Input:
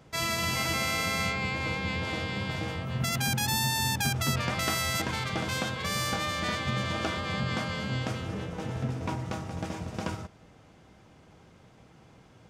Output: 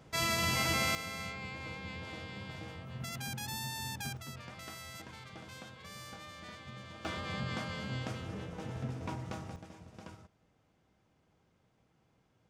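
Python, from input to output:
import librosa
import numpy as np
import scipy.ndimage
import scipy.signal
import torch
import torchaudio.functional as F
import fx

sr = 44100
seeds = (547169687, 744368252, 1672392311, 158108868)

y = fx.gain(x, sr, db=fx.steps((0.0, -2.0), (0.95, -12.0), (4.17, -18.0), (7.05, -7.0), (9.56, -16.5)))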